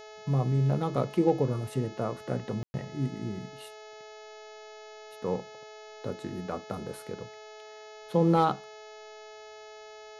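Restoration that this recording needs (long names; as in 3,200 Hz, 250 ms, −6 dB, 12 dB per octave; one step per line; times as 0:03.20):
clipped peaks rebuilt −13.5 dBFS
hum removal 428.3 Hz, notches 16
notch filter 650 Hz, Q 30
ambience match 0:02.63–0:02.74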